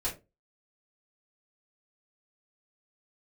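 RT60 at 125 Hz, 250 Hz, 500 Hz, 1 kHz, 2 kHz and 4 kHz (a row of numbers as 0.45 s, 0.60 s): 0.35 s, 0.30 s, 0.30 s, 0.20 s, 0.20 s, 0.15 s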